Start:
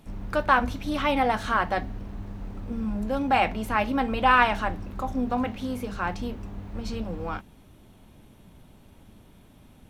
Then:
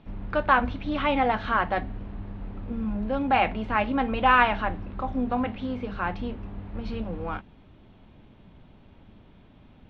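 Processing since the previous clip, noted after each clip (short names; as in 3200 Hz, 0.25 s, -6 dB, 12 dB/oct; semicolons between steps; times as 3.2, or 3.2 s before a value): LPF 3600 Hz 24 dB/oct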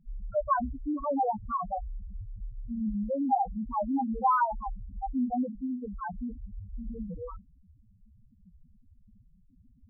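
loudest bins only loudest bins 2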